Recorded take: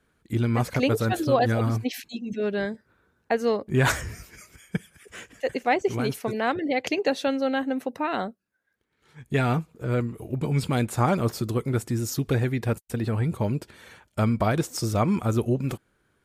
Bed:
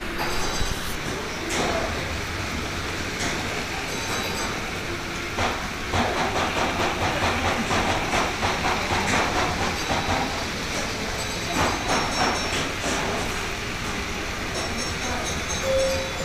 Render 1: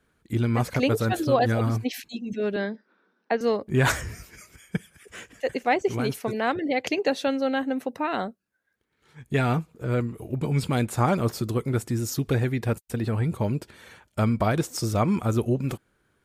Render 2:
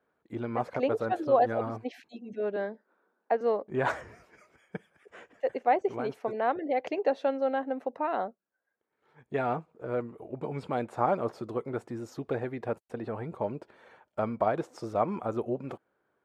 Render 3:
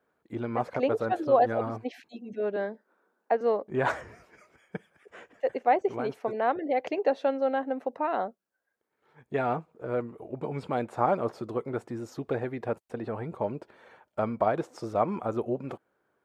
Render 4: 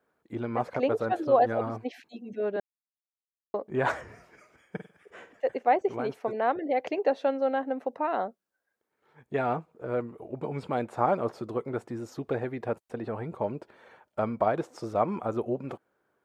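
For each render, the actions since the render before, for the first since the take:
2.56–3.41 Chebyshev band-pass 190–5700 Hz, order 5
band-pass 690 Hz, Q 1.2
gain +1.5 dB
2.6–3.54 mute; 4.05–5.31 flutter echo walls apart 8.4 m, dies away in 0.31 s

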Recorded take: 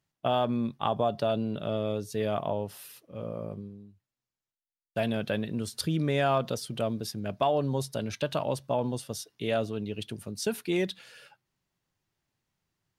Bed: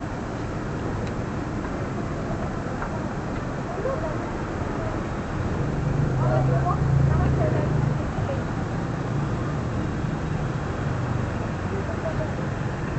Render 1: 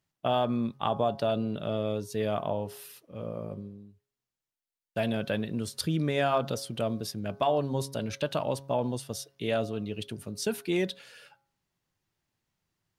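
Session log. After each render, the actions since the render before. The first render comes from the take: de-hum 137.5 Hz, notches 11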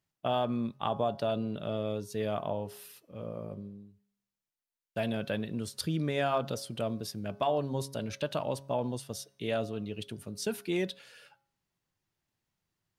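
resonator 200 Hz, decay 0.71 s, harmonics odd, mix 30%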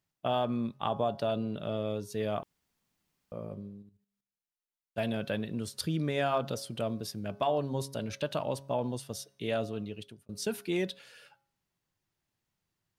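2.43–3.32 room tone; 3.82–4.98 level quantiser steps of 11 dB; 9.81–10.29 fade out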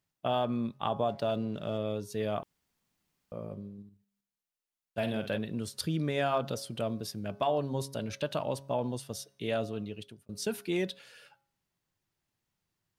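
1.09–1.78 backlash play -55 dBFS; 3.73–5.38 doubler 50 ms -9 dB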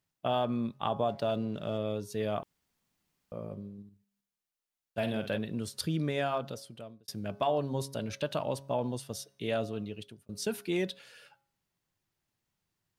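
6.05–7.08 fade out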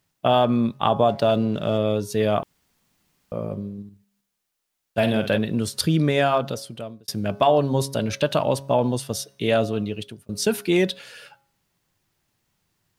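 gain +11.5 dB

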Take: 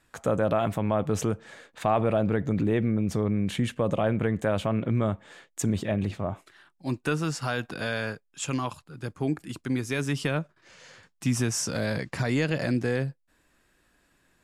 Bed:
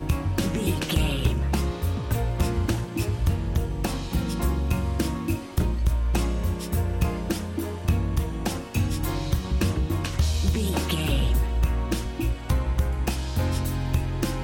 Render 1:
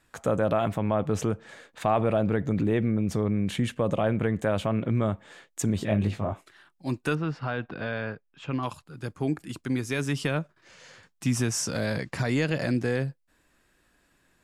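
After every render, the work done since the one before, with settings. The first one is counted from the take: 0.68–1.49 high shelf 6000 Hz -5.5 dB; 5.79–6.33 doubler 19 ms -4 dB; 7.15–8.63 air absorption 340 m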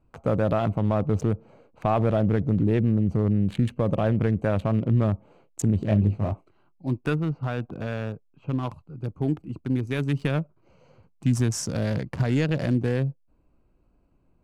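Wiener smoothing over 25 samples; low shelf 150 Hz +9 dB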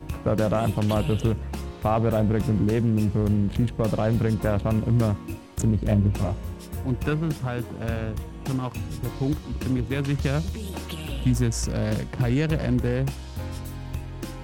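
add bed -8 dB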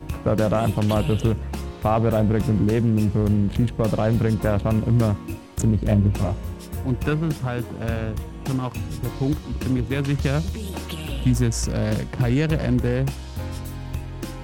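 gain +2.5 dB

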